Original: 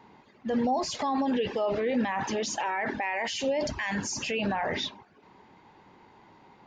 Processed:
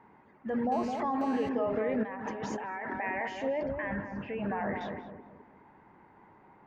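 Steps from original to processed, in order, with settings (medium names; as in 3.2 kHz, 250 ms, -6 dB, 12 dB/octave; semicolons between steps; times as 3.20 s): resonant high shelf 2.7 kHz -14 dB, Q 1.5; filtered feedback delay 211 ms, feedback 46%, low-pass 810 Hz, level -3 dB; 0.72–1.49 s: mobile phone buzz -42 dBFS; 2.03–2.93 s: compressor with a negative ratio -33 dBFS, ratio -1; 3.63–4.81 s: distance through air 360 m; trim -4.5 dB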